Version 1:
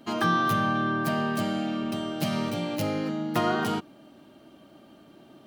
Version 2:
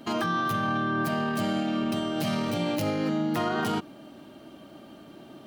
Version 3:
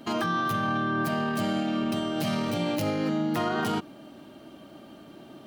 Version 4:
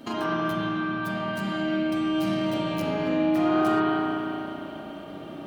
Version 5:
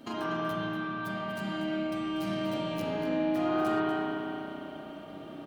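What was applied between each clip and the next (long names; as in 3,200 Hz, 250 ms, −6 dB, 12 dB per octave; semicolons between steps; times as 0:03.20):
brickwall limiter −24.5 dBFS, peak gain reduction 11.5 dB; level +5 dB
no processing that can be heard
downward compressor, threshold −31 dBFS, peak gain reduction 7.5 dB; spring reverb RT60 3.4 s, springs 31/35 ms, chirp 80 ms, DRR −7.5 dB
single-tap delay 241 ms −11 dB; level −5.5 dB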